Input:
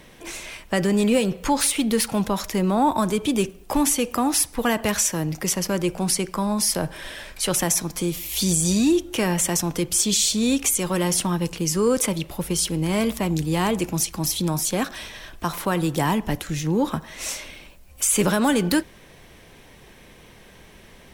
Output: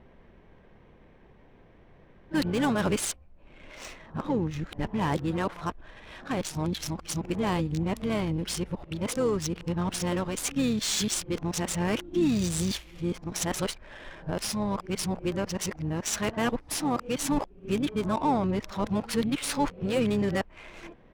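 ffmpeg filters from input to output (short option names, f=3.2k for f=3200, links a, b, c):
-filter_complex "[0:a]areverse,adynamicsmooth=sensitivity=3.5:basefreq=1.4k,asplit=3[a][b][c];[b]asetrate=22050,aresample=44100,atempo=2,volume=-13dB[d];[c]asetrate=29433,aresample=44100,atempo=1.49831,volume=-16dB[e];[a][d][e]amix=inputs=3:normalize=0,volume=-6dB"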